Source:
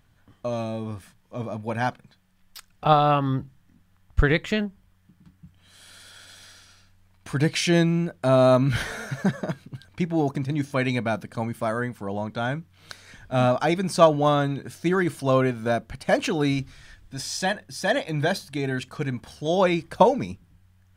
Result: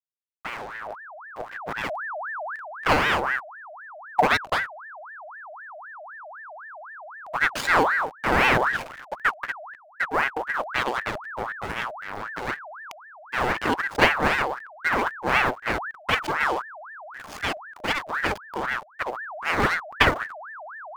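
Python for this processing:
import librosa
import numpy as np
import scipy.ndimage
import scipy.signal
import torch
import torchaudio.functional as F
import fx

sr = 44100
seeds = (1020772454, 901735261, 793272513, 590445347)

p1 = fx.lower_of_two(x, sr, delay_ms=0.52)
p2 = fx.peak_eq(p1, sr, hz=900.0, db=14.5, octaves=0.22)
p3 = fx.quant_companded(p2, sr, bits=4)
p4 = p2 + (p3 * librosa.db_to_amplitude(-10.0))
p5 = fx.backlash(p4, sr, play_db=-20.0)
y = fx.ring_lfo(p5, sr, carrier_hz=1200.0, swing_pct=50, hz=3.9)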